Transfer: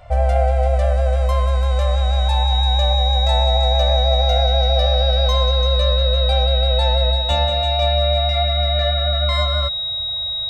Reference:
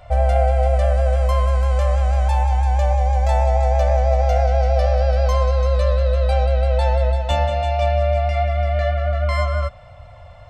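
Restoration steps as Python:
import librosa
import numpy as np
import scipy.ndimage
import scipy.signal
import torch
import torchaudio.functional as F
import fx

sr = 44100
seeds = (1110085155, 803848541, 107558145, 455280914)

y = fx.notch(x, sr, hz=3800.0, q=30.0)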